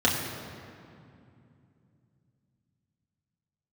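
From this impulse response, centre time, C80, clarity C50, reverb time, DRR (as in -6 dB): 79 ms, 4.5 dB, 3.5 dB, 2.6 s, -4.5 dB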